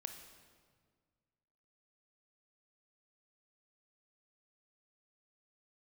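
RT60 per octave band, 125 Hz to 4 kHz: 2.3, 2.1, 1.8, 1.7, 1.4, 1.3 s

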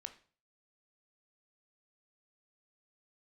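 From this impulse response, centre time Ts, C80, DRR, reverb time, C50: 7 ms, 17.5 dB, 7.5 dB, 0.40 s, 13.0 dB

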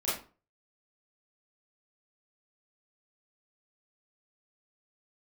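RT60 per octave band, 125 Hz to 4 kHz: 0.45, 0.40, 0.35, 0.35, 0.30, 0.25 s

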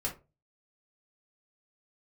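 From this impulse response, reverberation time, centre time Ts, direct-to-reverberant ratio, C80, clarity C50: 0.30 s, 16 ms, -2.5 dB, 19.5 dB, 11.0 dB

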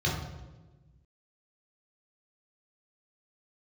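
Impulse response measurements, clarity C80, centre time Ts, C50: 6.0 dB, 57 ms, 3.0 dB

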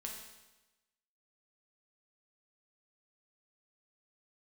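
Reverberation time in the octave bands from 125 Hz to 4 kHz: 1.1, 1.1, 1.1, 1.1, 1.0, 1.0 s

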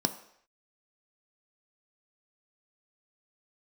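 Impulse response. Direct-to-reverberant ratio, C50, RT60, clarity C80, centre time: 8.0 dB, 13.5 dB, not exponential, 16.0 dB, 9 ms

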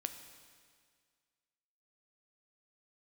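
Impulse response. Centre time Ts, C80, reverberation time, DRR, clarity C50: 23 ms, 10.0 dB, 1.9 s, 7.0 dB, 9.0 dB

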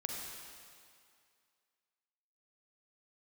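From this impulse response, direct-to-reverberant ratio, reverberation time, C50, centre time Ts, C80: -0.5 dB, 2.2 s, 0.5 dB, 0.105 s, 1.5 dB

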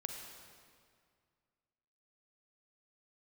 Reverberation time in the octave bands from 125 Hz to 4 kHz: 2.5, 2.3, 2.1, 2.1, 1.9, 1.7 s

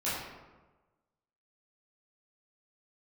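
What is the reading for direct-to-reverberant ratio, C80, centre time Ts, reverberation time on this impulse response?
-11.5 dB, 2.5 dB, 80 ms, 1.2 s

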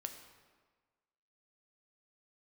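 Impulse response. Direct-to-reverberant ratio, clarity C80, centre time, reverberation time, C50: 5.5 dB, 9.0 dB, 24 ms, 1.5 s, 8.0 dB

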